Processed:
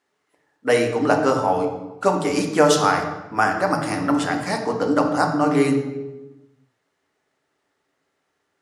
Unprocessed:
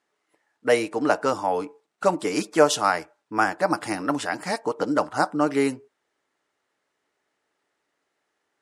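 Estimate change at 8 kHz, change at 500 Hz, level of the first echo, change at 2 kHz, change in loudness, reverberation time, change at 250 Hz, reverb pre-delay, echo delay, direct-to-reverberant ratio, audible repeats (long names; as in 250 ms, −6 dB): +2.5 dB, +3.5 dB, no echo audible, +3.0 dB, +3.5 dB, 1.1 s, +5.5 dB, 3 ms, no echo audible, 3.0 dB, no echo audible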